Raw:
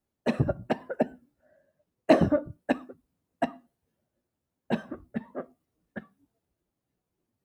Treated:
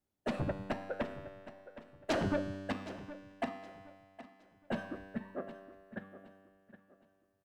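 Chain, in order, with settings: in parallel at -10 dB: sine folder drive 16 dB, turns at -6 dBFS; on the sum: feedback comb 97 Hz, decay 1.9 s, mix 80%; feedback delay 767 ms, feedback 31%, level -15 dB; trim -3.5 dB

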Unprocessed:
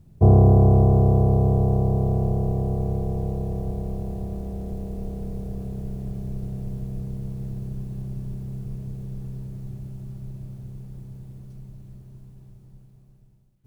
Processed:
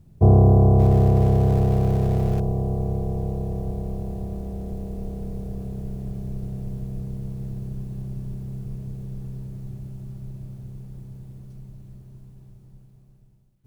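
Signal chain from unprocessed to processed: 0.79–2.40 s: jump at every zero crossing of -32.5 dBFS

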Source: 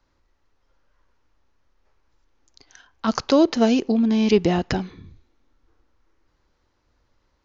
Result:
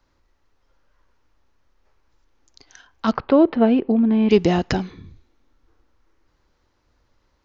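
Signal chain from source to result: 3.11–4.31 s: Gaussian low-pass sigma 3.4 samples; trim +2 dB

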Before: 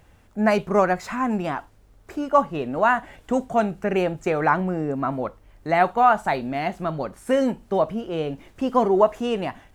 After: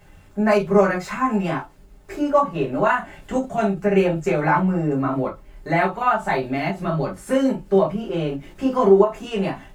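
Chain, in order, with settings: bass shelf 360 Hz -5.5 dB; in parallel at -1.5 dB: compression, threshold -32 dBFS, peak gain reduction 18.5 dB; on the sum: comb of notches 240 Hz; reverberation, pre-delay 5 ms, DRR -4.5 dB; endings held to a fixed fall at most 210 dB/s; trim -4 dB

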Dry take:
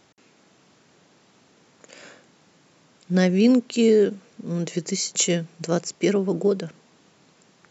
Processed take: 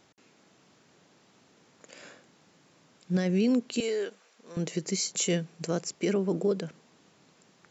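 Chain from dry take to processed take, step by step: 3.80–4.57 s: high-pass 690 Hz 12 dB/octave; peak limiter -14 dBFS, peak gain reduction 8 dB; trim -4 dB

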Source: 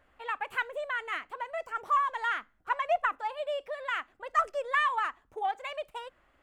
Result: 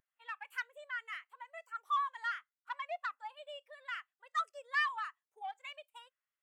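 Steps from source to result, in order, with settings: saturation -21 dBFS, distortion -18 dB; differentiator; spectral contrast expander 1.5:1; trim +6 dB

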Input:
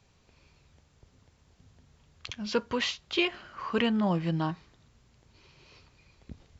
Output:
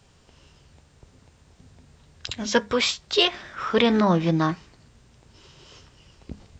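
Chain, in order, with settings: formant shift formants +3 st; de-hum 101.7 Hz, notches 2; trim +7.5 dB

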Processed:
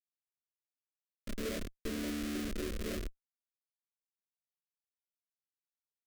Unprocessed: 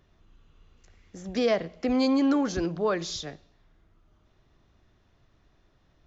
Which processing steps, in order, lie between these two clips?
vocoder on a held chord major triad, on D3; hum notches 60/120/180/240/300/360/420 Hz; Schmitt trigger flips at -29 dBFS; static phaser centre 350 Hz, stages 4; trim -1.5 dB

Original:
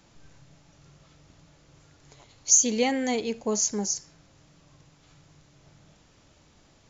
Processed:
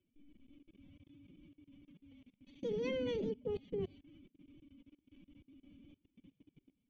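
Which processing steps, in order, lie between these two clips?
cascade formant filter i; formant-preserving pitch shift +11.5 st; level held to a coarse grid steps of 23 dB; trim +9.5 dB

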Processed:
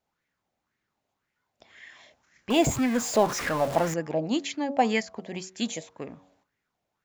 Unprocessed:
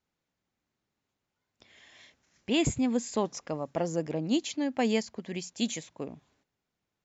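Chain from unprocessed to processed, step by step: 2.50–3.94 s: jump at every zero crossing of -30 dBFS; de-hum 93.75 Hz, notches 14; sweeping bell 1.9 Hz 620–2000 Hz +13 dB

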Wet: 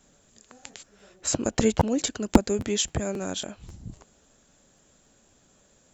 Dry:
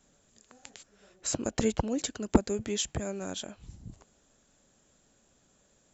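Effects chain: crackling interface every 0.27 s, samples 512, repeat, from 0.71 s; trim +5.5 dB

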